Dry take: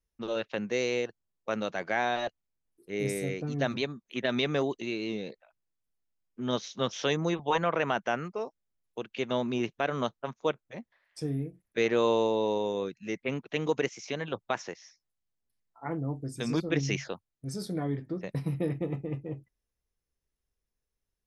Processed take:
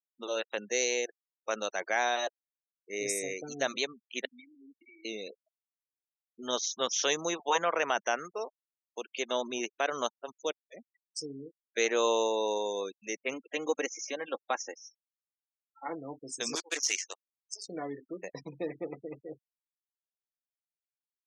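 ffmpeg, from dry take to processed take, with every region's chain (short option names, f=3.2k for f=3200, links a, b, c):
-filter_complex "[0:a]asettb=1/sr,asplit=3[a][b][c];[a]atrim=end=4.254[d];[b]atrim=start=4.25:end=5.05,asetpts=PTS-STARTPTS,afade=t=in:d=0.004:c=qsin,afade=t=out:st=0.796:d=0.004:c=qsin,bandreject=f=58.9:t=h:w=4,bandreject=f=117.8:t=h:w=4,bandreject=f=176.7:t=h:w=4,bandreject=f=235.6:t=h:w=4,bandreject=f=294.5:t=h:w=4,bandreject=f=353.4:t=h:w=4,bandreject=f=412.3:t=h:w=4,bandreject=f=471.2:t=h:w=4,bandreject=f=530.1:t=h:w=4,bandreject=f=589:t=h:w=4,bandreject=f=647.9:t=h:w=4,bandreject=f=706.8:t=h:w=4,bandreject=f=765.7:t=h:w=4,bandreject=f=824.6:t=h:w=4,bandreject=f=883.5:t=h:w=4,bandreject=f=942.4:t=h:w=4,bandreject=f=1.0013k:t=h:w=4,bandreject=f=1.0602k:t=h:w=4,bandreject=f=1.1191k:t=h:w=4,bandreject=f=1.178k:t=h:w=4,bandreject=f=1.2369k:t=h:w=4,bandreject=f=1.2958k:t=h:w=4,bandreject=f=1.3547k:t=h:w=4,bandreject=f=1.4136k:t=h:w=4,bandreject=f=1.4725k:t=h:w=4,acompressor=threshold=-36dB:ratio=6:attack=3.2:release=140:knee=1:detection=peak,asplit=3[e][f][g];[e]bandpass=f=270:t=q:w=8,volume=0dB[h];[f]bandpass=f=2.29k:t=q:w=8,volume=-6dB[i];[g]bandpass=f=3.01k:t=q:w=8,volume=-9dB[j];[h][i][j]amix=inputs=3:normalize=0[k];[c]atrim=start=5.046[l];[d][k]acrossfade=d=0.004:c1=hsin:c2=qsin[m];[m][l]acrossfade=d=0.004:c1=qsin:c2=hsin,asettb=1/sr,asplit=3[n][o][p];[n]atrim=end=10.124[q];[o]atrim=start=10.12:end=11.43,asetpts=PTS-STARTPTS,afade=t=in:d=0.004:c=qsin,afade=t=out:st=1.306:d=0.004:c=qsin,acompressor=mode=upward:threshold=-43dB:ratio=2.5:attack=3.2:release=140:knee=2.83:detection=peak,equalizer=f=1.1k:t=o:w=1.7:g=-8[r];[p]atrim=start=11.426[s];[q][r]acrossfade=d=0.004:c1=hsin:c2=qsin[t];[t][s]acrossfade=d=0.004:c1=qsin:c2=hsin,asettb=1/sr,asplit=3[u][v][w];[u]atrim=end=13.334[x];[v]atrim=start=13.33:end=15.91,asetpts=PTS-STARTPTS,afade=t=in:d=0.004:c=qsin,afade=t=out:st=2.576:d=0.004:c=qsin,highshelf=f=2.6k:g=-8,aecho=1:1:3.7:0.48,atrim=end_sample=113778[y];[w]atrim=start=15.906[z];[x][y]acrossfade=d=0.004:c1=hsin:c2=qsin[aa];[aa][z]acrossfade=d=0.004:c1=qsin:c2=hsin,asettb=1/sr,asplit=3[ab][ac][ad];[ab]atrim=end=16.554[ae];[ac]atrim=start=16.55:end=17.69,asetpts=PTS-STARTPTS,afade=t=in:d=0.004:c=qsin,afade=t=out:st=1.136:d=0.004:c=qsin,highpass=f=1k:p=1,agate=range=-33dB:threshold=-41dB:ratio=3:release=100:detection=peak,acrusher=bits=7:dc=4:mix=0:aa=0.000001[af];[ad]atrim=start=17.686[ag];[ae][af]acrossfade=d=0.004:c1=hsin:c2=qsin[ah];[ah][ag]acrossfade=d=0.004:c1=qsin:c2=hsin,highpass=430,equalizer=f=6.5k:t=o:w=0.82:g=14,afftfilt=real='re*gte(hypot(re,im),0.00891)':imag='im*gte(hypot(re,im),0.00891)':win_size=1024:overlap=0.75"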